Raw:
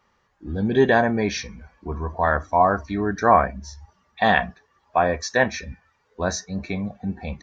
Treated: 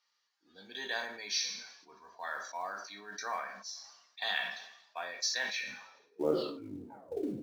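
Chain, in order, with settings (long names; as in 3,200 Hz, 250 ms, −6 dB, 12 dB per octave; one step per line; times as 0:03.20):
turntable brake at the end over 1.37 s
high-pass filter 210 Hz 12 dB per octave
band-pass filter sweep 4,700 Hz → 330 Hz, 0:05.47–0:06.07
in parallel at −10 dB: floating-point word with a short mantissa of 2 bits
on the sum: coupled-rooms reverb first 0.38 s, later 1.6 s, from −27 dB, DRR 5 dB
level that may fall only so fast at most 68 dB per second
level −2.5 dB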